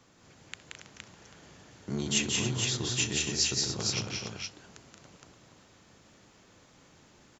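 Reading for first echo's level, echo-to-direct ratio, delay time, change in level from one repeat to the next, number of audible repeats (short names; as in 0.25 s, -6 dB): -19.0 dB, 0.5 dB, 64 ms, no steady repeat, 6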